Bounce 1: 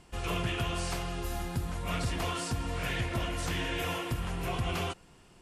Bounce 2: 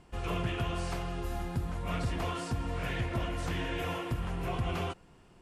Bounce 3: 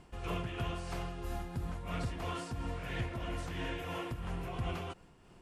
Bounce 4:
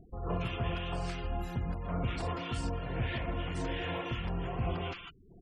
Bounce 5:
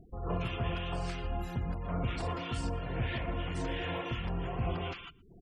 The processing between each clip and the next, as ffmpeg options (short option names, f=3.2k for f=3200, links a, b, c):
-af "highshelf=f=2.7k:g=-9"
-filter_complex "[0:a]asplit=2[a][b];[b]acompressor=threshold=-40dB:ratio=6,volume=1dB[c];[a][c]amix=inputs=2:normalize=0,tremolo=f=3:d=0.44,volume=-5.5dB"
-filter_complex "[0:a]bandreject=f=50:t=h:w=6,bandreject=f=100:t=h:w=6,bandreject=f=150:t=h:w=6,bandreject=f=200:t=h:w=6,bandreject=f=250:t=h:w=6,bandreject=f=300:t=h:w=6,bandreject=f=350:t=h:w=6,acrossover=split=1300[a][b];[b]adelay=170[c];[a][c]amix=inputs=2:normalize=0,afftfilt=real='re*gte(hypot(re,im),0.00251)':imag='im*gte(hypot(re,im),0.00251)':win_size=1024:overlap=0.75,volume=4.5dB"
-filter_complex "[0:a]asplit=2[a][b];[b]adelay=116.6,volume=-24dB,highshelf=f=4k:g=-2.62[c];[a][c]amix=inputs=2:normalize=0"